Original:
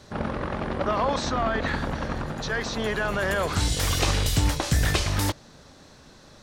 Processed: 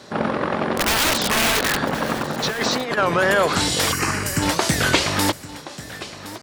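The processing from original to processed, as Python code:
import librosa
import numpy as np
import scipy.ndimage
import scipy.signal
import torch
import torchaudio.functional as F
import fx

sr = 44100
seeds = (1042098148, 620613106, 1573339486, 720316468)

y = scipy.signal.sosfilt(scipy.signal.butter(2, 190.0, 'highpass', fs=sr, output='sos'), x)
y = fx.high_shelf(y, sr, hz=10000.0, db=-3.5)
y = fx.notch(y, sr, hz=6200.0, q=18.0)
y = fx.overflow_wrap(y, sr, gain_db=22.0, at=(0.75, 1.79))
y = fx.over_compress(y, sr, threshold_db=-31.0, ratio=-0.5, at=(2.42, 2.99), fade=0.02)
y = fx.fixed_phaser(y, sr, hz=1500.0, stages=4, at=(3.91, 4.41), fade=0.02)
y = y + 10.0 ** (-15.5 / 20.0) * np.pad(y, (int(1067 * sr / 1000.0), 0))[:len(y)]
y = fx.record_warp(y, sr, rpm=33.33, depth_cents=250.0)
y = y * librosa.db_to_amplitude(8.5)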